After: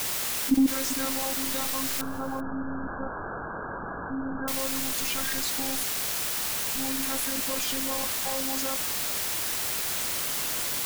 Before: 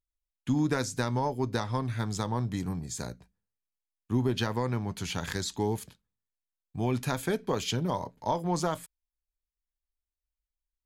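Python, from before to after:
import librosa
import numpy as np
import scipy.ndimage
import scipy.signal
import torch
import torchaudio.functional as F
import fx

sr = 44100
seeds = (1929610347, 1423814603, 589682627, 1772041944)

y = fx.bin_expand(x, sr, power=1.5)
y = fx.peak_eq(y, sr, hz=290.0, db=4.5, octaves=0.32)
y = fx.hum_notches(y, sr, base_hz=60, count=4)
y = fx.level_steps(y, sr, step_db=24)
y = fx.robotise(y, sr, hz=267.0)
y = fx.quant_dither(y, sr, seeds[0], bits=8, dither='triangular')
y = fx.brickwall_lowpass(y, sr, high_hz=1700.0, at=(2.01, 4.48))
y = y + 10.0 ** (-22.0 / 20.0) * np.pad(y, (int(391 * sr / 1000.0), 0))[:len(y)]
y = fx.env_flatten(y, sr, amount_pct=50)
y = y * 10.0 ** (6.5 / 20.0)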